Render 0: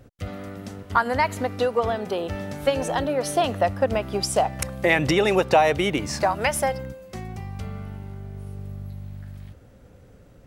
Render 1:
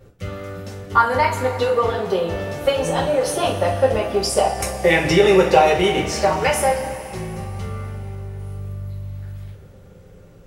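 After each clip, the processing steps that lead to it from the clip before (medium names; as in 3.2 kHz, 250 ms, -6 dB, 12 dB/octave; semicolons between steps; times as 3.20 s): two-slope reverb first 0.32 s, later 3.4 s, from -18 dB, DRR -5.5 dB; trim -2.5 dB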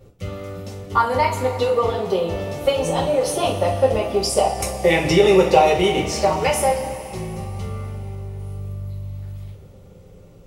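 peaking EQ 1.6 kHz -10 dB 0.44 oct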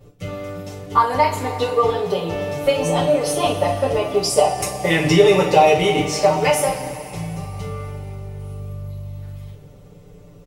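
comb 6.8 ms, depth 92%; trim -1 dB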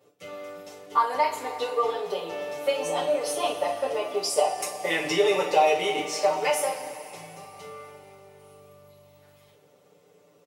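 high-pass 410 Hz 12 dB/octave; trim -6.5 dB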